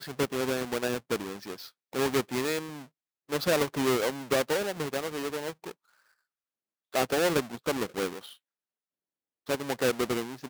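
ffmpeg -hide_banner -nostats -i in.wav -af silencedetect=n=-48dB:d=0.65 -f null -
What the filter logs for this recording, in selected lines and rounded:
silence_start: 5.72
silence_end: 6.93 | silence_duration: 1.21
silence_start: 8.34
silence_end: 9.47 | silence_duration: 1.12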